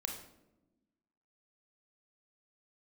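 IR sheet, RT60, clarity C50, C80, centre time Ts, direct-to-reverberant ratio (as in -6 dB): 1.0 s, 6.0 dB, 9.0 dB, 28 ms, 2.0 dB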